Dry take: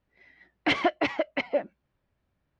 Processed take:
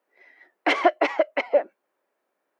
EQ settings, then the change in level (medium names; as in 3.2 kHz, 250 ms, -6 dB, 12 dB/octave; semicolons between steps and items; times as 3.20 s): high-pass 370 Hz 24 dB/octave; peaking EQ 3.6 kHz -8.5 dB 1.6 oct; +7.5 dB